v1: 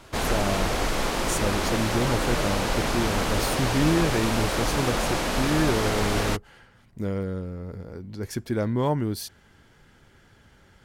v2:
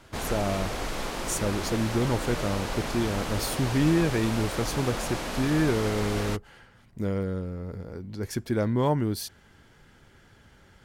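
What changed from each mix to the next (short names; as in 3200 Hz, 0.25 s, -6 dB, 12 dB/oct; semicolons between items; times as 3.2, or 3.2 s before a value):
background -6.5 dB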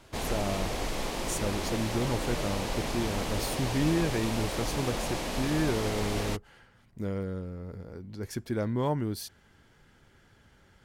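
speech -4.5 dB; background: add bell 1400 Hz -6 dB 0.61 oct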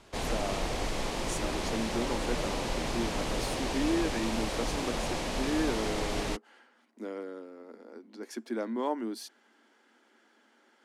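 speech: add rippled Chebyshev high-pass 220 Hz, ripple 3 dB; master: add LPF 10000 Hz 12 dB/oct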